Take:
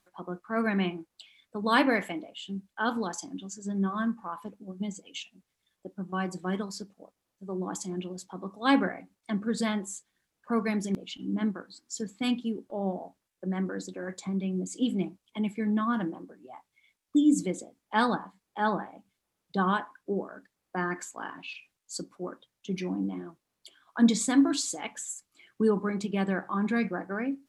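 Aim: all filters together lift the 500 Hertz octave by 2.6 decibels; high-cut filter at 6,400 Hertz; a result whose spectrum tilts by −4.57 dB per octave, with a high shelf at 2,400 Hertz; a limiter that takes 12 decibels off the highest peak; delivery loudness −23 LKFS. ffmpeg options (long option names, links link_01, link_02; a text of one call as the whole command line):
ffmpeg -i in.wav -af "lowpass=6400,equalizer=frequency=500:width_type=o:gain=3,highshelf=frequency=2400:gain=6,volume=8.5dB,alimiter=limit=-9.5dB:level=0:latency=1" out.wav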